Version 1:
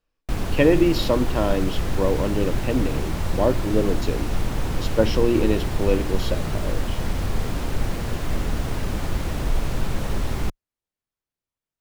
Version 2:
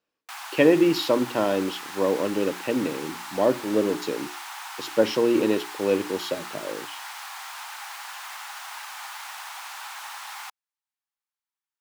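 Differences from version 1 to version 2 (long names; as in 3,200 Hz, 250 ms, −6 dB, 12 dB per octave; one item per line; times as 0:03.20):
speech: add high-pass filter 210 Hz
background: add Chebyshev high-pass filter 810 Hz, order 5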